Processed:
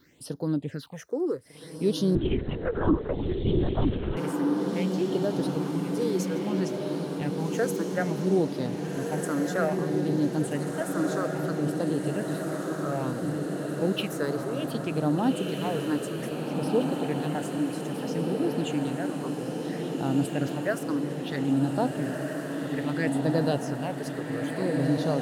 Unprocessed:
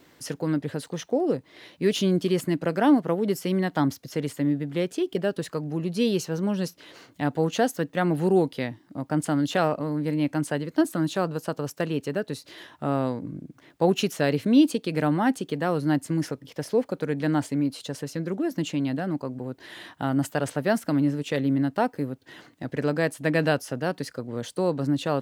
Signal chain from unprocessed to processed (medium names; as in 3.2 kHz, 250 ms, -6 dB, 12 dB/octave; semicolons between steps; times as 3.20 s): phase shifter stages 6, 0.61 Hz, lowest notch 170–2400 Hz; echo that smears into a reverb 1625 ms, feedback 68%, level -3 dB; 2.15–4.17 s: LPC vocoder at 8 kHz whisper; trim -2.5 dB